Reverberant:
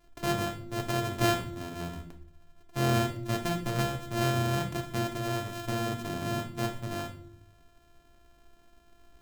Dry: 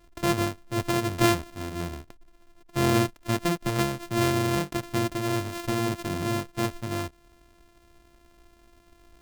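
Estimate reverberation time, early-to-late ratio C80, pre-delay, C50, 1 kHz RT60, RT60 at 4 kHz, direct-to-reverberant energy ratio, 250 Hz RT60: 0.60 s, 14.0 dB, 5 ms, 10.5 dB, 0.55 s, 0.45 s, 3.0 dB, 0.95 s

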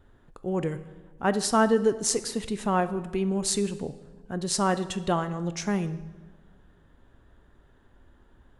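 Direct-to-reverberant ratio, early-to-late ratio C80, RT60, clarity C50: 11.5 dB, 16.0 dB, 1.3 s, 14.0 dB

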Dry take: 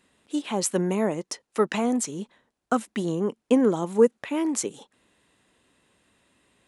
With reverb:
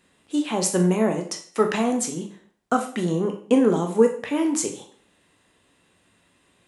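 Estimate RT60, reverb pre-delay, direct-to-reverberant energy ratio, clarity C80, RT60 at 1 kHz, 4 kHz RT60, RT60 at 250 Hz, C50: 0.50 s, 6 ms, 3.5 dB, 13.5 dB, 0.45 s, 0.45 s, 0.55 s, 9.5 dB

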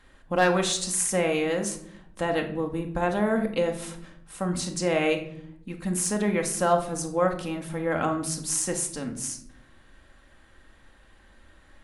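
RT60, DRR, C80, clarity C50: 0.70 s, 3.0 dB, 13.5 dB, 9.5 dB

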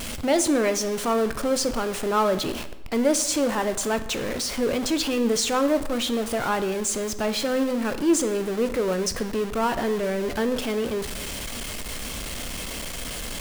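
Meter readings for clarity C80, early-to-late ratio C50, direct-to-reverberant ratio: 15.5 dB, 13.0 dB, 10.0 dB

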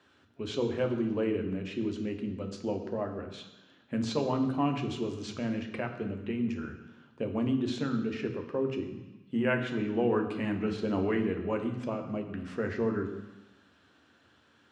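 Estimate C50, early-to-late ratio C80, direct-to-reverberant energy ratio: 8.0 dB, 10.0 dB, 4.5 dB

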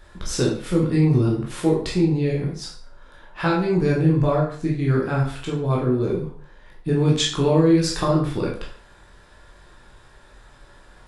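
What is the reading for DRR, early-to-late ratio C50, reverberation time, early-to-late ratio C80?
-3.5 dB, 5.0 dB, 0.50 s, 9.0 dB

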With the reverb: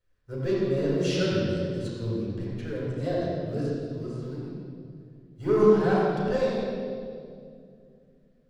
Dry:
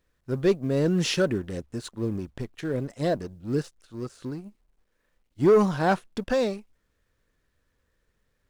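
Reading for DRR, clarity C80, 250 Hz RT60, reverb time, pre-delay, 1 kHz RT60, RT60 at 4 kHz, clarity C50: -8.0 dB, -1.5 dB, 3.2 s, 2.3 s, 4 ms, 1.9 s, 1.8 s, -3.0 dB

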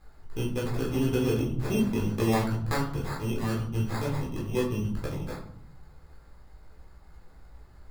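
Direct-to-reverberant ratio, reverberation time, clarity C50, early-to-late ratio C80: -5.0 dB, 0.70 s, 5.5 dB, 9.5 dB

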